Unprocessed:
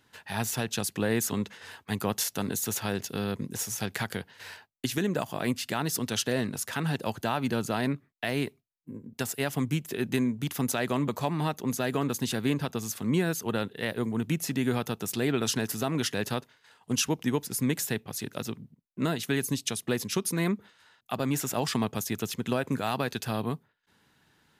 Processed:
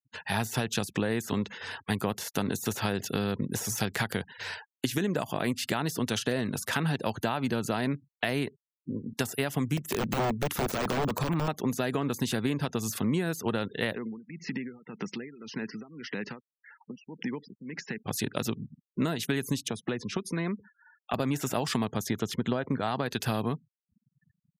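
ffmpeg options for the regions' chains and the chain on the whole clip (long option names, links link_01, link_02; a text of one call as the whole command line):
ffmpeg -i in.wav -filter_complex "[0:a]asettb=1/sr,asplit=3[link_01][link_02][link_03];[link_01]atrim=end=9.774[link_04];[link_02]atrim=start=9.77:end=11.48,asetpts=PTS-STARTPTS,afade=type=in:duration=0.004:curve=qsin,afade=type=out:start_time=1.706:duration=0.004:curve=qsin,equalizer=frequency=1300:width=7.4:gain=3.5,aeval=exprs='(mod(15*val(0)+1,2)-1)/15':channel_layout=same[link_05];[link_03]atrim=start=11.476[link_06];[link_04][link_05]acrossfade=duration=0.004:curve1=hsin:curve2=qsin[link_07];[link_07][link_06]acrossfade=duration=0.004:curve1=qsin:curve2=hsin,asettb=1/sr,asplit=3[link_08][link_09][link_10];[link_08]atrim=end=13.964[link_11];[link_09]atrim=start=13.96:end=18.05,asetpts=PTS-STARTPTS,afade=type=in:duration=0.004:curve=qsin,afade=type=out:start_time=4.086:duration=0.004:curve=qsin,acompressor=threshold=-35dB:ratio=16:attack=3.2:release=140:knee=1:detection=peak,tremolo=f=1.8:d=0.84,highpass=frequency=150:width=0.5412,highpass=frequency=150:width=1.3066,equalizer=frequency=200:width_type=q:width=4:gain=4,equalizer=frequency=650:width_type=q:width=4:gain=-7,equalizer=frequency=2000:width_type=q:width=4:gain=6,equalizer=frequency=3600:width_type=q:width=4:gain=-8,lowpass=frequency=5000:width=0.5412,lowpass=frequency=5000:width=1.3066[link_12];[link_10]atrim=start=18.046[link_13];[link_11][link_12]acrossfade=duration=0.004:curve1=hsin:curve2=qsin[link_14];[link_14][link_13]acrossfade=duration=0.004:curve1=qsin:curve2=hsin,asettb=1/sr,asplit=3[link_15][link_16][link_17];[link_15]atrim=end=19.684[link_18];[link_16]atrim=start=19.68:end=21.14,asetpts=PTS-STARTPTS,afade=type=in:duration=0.004:curve=qsin,afade=type=out:start_time=1.456:duration=0.004:curve=qsin,aemphasis=mode=reproduction:type=75fm,acrossover=split=100|1200[link_19][link_20][link_21];[link_19]acompressor=threshold=-60dB:ratio=4[link_22];[link_20]acompressor=threshold=-37dB:ratio=4[link_23];[link_21]acompressor=threshold=-45dB:ratio=4[link_24];[link_22][link_23][link_24]amix=inputs=3:normalize=0[link_25];[link_17]atrim=start=21.136[link_26];[link_18][link_25]acrossfade=duration=0.004:curve1=hsin:curve2=qsin[link_27];[link_27][link_26]acrossfade=duration=0.004:curve1=qsin:curve2=hsin,asettb=1/sr,asplit=3[link_28][link_29][link_30];[link_28]atrim=end=21.874[link_31];[link_29]atrim=start=21.87:end=23.06,asetpts=PTS-STARTPTS,afade=type=in:duration=0.004:curve=qsin,afade=type=out:start_time=1.186:duration=0.004:curve=qsin,lowpass=frequency=3900:poles=1,bandreject=frequency=2600:width=7.9[link_32];[link_30]atrim=start=23.056[link_33];[link_31][link_32]acrossfade=duration=0.004:curve1=hsin:curve2=qsin[link_34];[link_34][link_33]acrossfade=duration=0.004:curve1=qsin:curve2=hsin,deesser=0.65,afftfilt=real='re*gte(hypot(re,im),0.00316)':imag='im*gte(hypot(re,im),0.00316)':win_size=1024:overlap=0.75,acompressor=threshold=-32dB:ratio=6,volume=7dB" out.wav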